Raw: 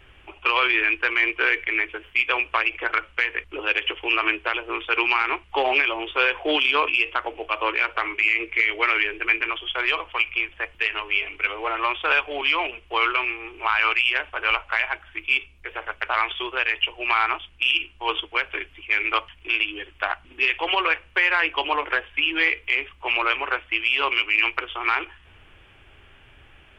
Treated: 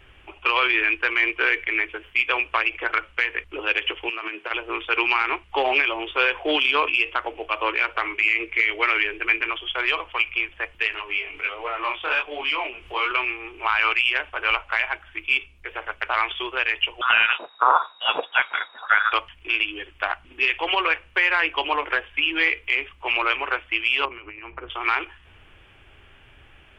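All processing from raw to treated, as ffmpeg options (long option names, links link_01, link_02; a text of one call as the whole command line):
ffmpeg -i in.wav -filter_complex "[0:a]asettb=1/sr,asplit=3[link_01][link_02][link_03];[link_01]atrim=end=4.094[link_04];[link_02]atrim=start=4.09:end=4.51,asetpts=PTS-STARTPTS,afade=type=in:duration=0.004:curve=qsin,afade=type=out:start_time=0.416:duration=0.004:curve=qsin,highpass=frequency=160:width=0.5412,highpass=frequency=160:width=1.3066,acompressor=threshold=-26dB:ratio=6:attack=3.2:release=140:knee=1:detection=peak[link_05];[link_03]atrim=start=4.506[link_06];[link_04][link_05]acrossfade=duration=0.004:curve1=hsin:curve2=qsin[link_07];[link_07][link_06]acrossfade=duration=0.004:curve1=qsin:curve2=hsin,asettb=1/sr,asplit=3[link_08][link_09][link_10];[link_08]atrim=end=10.924[link_11];[link_09]atrim=start=10.92:end=13.11,asetpts=PTS-STARTPTS,afade=type=in:duration=0.004:curve=qsin,afade=type=out:start_time=2.186:duration=0.004:curve=qsin,acompressor=mode=upward:threshold=-27dB:ratio=2.5:attack=3.2:release=140:knee=2.83:detection=peak,flanger=delay=19:depth=6.2:speed=1.3[link_12];[link_10]atrim=start=13.106[link_13];[link_11][link_12]acrossfade=duration=0.004:curve1=hsin:curve2=qsin[link_14];[link_14][link_13]acrossfade=duration=0.004:curve1=qsin:curve2=hsin,asettb=1/sr,asplit=3[link_15][link_16][link_17];[link_15]atrim=end=17.014[link_18];[link_16]atrim=start=17.01:end=19.13,asetpts=PTS-STARTPTS,afade=type=in:duration=0.004:curve=qsin,afade=type=out:start_time=2.116:duration=0.004:curve=qsin,highshelf=frequency=2300:gain=8.5,lowpass=frequency=3200:width_type=q:width=0.5098,lowpass=frequency=3200:width_type=q:width=0.6013,lowpass=frequency=3200:width_type=q:width=0.9,lowpass=frequency=3200:width_type=q:width=2.563,afreqshift=-3800[link_19];[link_17]atrim=start=19.126[link_20];[link_18][link_19]acrossfade=duration=0.004:curve1=hsin:curve2=qsin[link_21];[link_21][link_20]acrossfade=duration=0.004:curve1=qsin:curve2=hsin,asettb=1/sr,asplit=3[link_22][link_23][link_24];[link_22]atrim=end=24.054[link_25];[link_23]atrim=start=24.05:end=24.7,asetpts=PTS-STARTPTS,afade=type=in:duration=0.004:curve=qsin,afade=type=out:start_time=0.646:duration=0.004:curve=qsin,equalizer=frequency=99:width=0.52:gain=12.5,acompressor=threshold=-26dB:ratio=5:attack=3.2:release=140:knee=1:detection=peak,lowpass=1300[link_26];[link_24]atrim=start=24.696[link_27];[link_25][link_26]acrossfade=duration=0.004:curve1=hsin:curve2=qsin[link_28];[link_28][link_27]acrossfade=duration=0.004:curve1=qsin:curve2=hsin" out.wav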